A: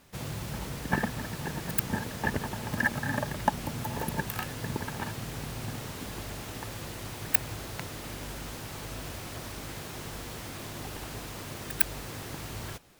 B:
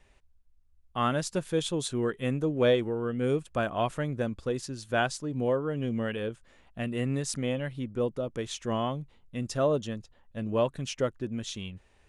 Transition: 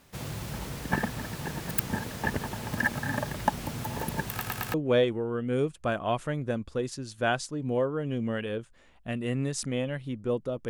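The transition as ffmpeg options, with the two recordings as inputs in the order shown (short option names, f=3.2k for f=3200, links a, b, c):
-filter_complex "[0:a]apad=whole_dur=10.69,atrim=end=10.69,asplit=4[a][b][c][d];[a]atrim=end=4.412[e];[b]atrim=start=4.298:end=4.412[f];[c]atrim=start=4.298:end=4.412[g];[d]atrim=start=4.298:end=4.412[h];[1:a]atrim=start=2.448:end=8.4[i];[e][f]acrossfade=d=0.004:c1=hsin:c2=hsin[j];[j][g]acrossfade=d=0.004:c1=hsin:c2=hsin[k];[k][h]acrossfade=d=0.004:c1=hsin:c2=hsin[l];[l][i]acrossfade=d=0.004:c1=hsin:c2=hsin"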